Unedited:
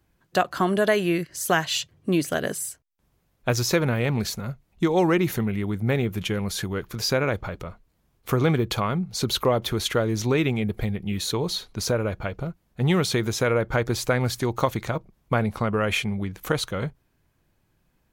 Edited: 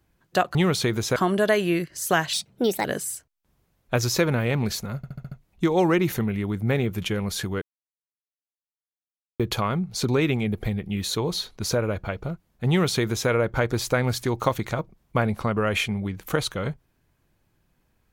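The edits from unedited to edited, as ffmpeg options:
-filter_complex "[0:a]asplit=13[s0][s1][s2][s3][s4][s5][s6][s7][s8][s9][s10][s11][s12];[s0]atrim=end=0.552[s13];[s1]atrim=start=12.848:end=13.462[s14];[s2]atrim=start=0.548:end=1.724[s15];[s3]atrim=start=1.72:end=2.39,asetpts=PTS-STARTPTS,asetrate=57330,aresample=44100,atrim=end_sample=22728,asetpts=PTS-STARTPTS[s16];[s4]atrim=start=2.386:end=4.582[s17];[s5]atrim=start=4.508:end=4.582[s18];[s6]atrim=start=4.508:end=4.582[s19];[s7]atrim=start=4.508:end=4.582[s20];[s8]atrim=start=4.508:end=4.582[s21];[s9]atrim=start=4.508:end=6.81,asetpts=PTS-STARTPTS,afade=t=out:st=2.298:d=0.004:c=hsin[s22];[s10]atrim=start=6.81:end=8.59,asetpts=PTS-STARTPTS,volume=0[s23];[s11]atrim=start=8.59:end=9.282,asetpts=PTS-STARTPTS,afade=t=in:d=0.004:c=hsin[s24];[s12]atrim=start=10.248[s25];[s13][s14]acrossfade=d=0.004:c1=hsin:c2=hsin[s26];[s26][s15]acrossfade=d=0.004:c1=hsin:c2=hsin[s27];[s27][s16]acrossfade=d=0.004:c1=hsin:c2=hsin[s28];[s28][s17]acrossfade=d=0.004:c1=hsin:c2=hsin[s29];[s29][s18]acrossfade=d=0.004:c1=hsin:c2=hsin[s30];[s30][s19]acrossfade=d=0.004:c1=hsin:c2=hsin[s31];[s31][s20]acrossfade=d=0.004:c1=hsin:c2=hsin[s32];[s32][s21]acrossfade=d=0.004:c1=hsin:c2=hsin[s33];[s22][s23][s24]concat=n=3:v=0:a=1[s34];[s33][s34]acrossfade=d=0.004:c1=hsin:c2=hsin[s35];[s35][s25]acrossfade=d=0.004:c1=hsin:c2=hsin"

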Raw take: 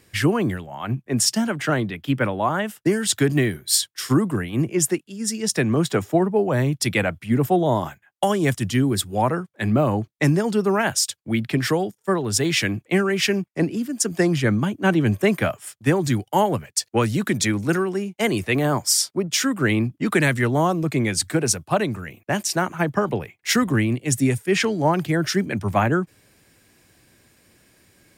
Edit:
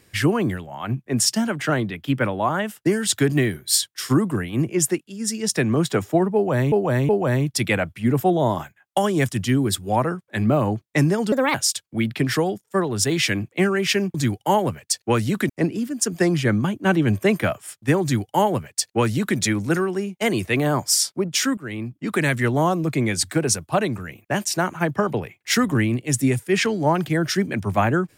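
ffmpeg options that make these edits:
-filter_complex "[0:a]asplit=8[s0][s1][s2][s3][s4][s5][s6][s7];[s0]atrim=end=6.722[s8];[s1]atrim=start=6.348:end=6.722[s9];[s2]atrim=start=6.348:end=10.584[s10];[s3]atrim=start=10.58:end=10.88,asetpts=PTS-STARTPTS,asetrate=59094,aresample=44100,atrim=end_sample=9873,asetpts=PTS-STARTPTS[s11];[s4]atrim=start=10.876:end=13.482[s12];[s5]atrim=start=16.008:end=17.362[s13];[s6]atrim=start=13.478:end=19.56,asetpts=PTS-STARTPTS,afade=t=out:st=6.078:d=0.004:c=hsin:silence=0.141254[s14];[s7]atrim=start=19.56,asetpts=PTS-STARTPTS,afade=t=in:d=0.88:silence=0.141254[s15];[s8][s9]acrossfade=d=0.004:c1=hsin:c2=hsin[s16];[s16][s10]acrossfade=d=0.004:c1=hsin:c2=hsin[s17];[s17][s11]acrossfade=d=0.004:c1=hsin:c2=hsin[s18];[s18][s12]acrossfade=d=0.004:c1=hsin:c2=hsin[s19];[s19][s13]acrossfade=d=0.004:c1=hsin:c2=hsin[s20];[s14][s15]concat=n=2:v=0:a=1[s21];[s20][s21]acrossfade=d=0.004:c1=hsin:c2=hsin"

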